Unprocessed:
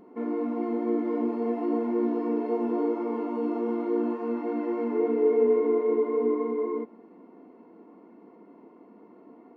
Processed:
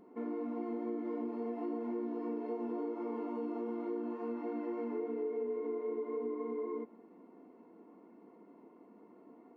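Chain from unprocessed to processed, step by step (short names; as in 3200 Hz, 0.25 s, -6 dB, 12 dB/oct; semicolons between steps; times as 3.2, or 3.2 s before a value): compressor, threshold -28 dBFS, peak gain reduction 10 dB; gain -6.5 dB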